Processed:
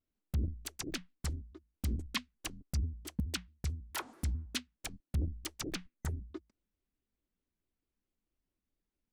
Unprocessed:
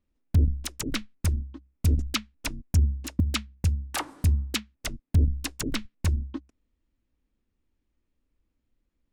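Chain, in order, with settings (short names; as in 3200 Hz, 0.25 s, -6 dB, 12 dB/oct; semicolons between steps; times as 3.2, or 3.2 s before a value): spectral gain 5.86–6.29, 2400–7300 Hz -9 dB; low shelf 120 Hz -7 dB; shaped vibrato square 4.6 Hz, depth 250 cents; gain -8 dB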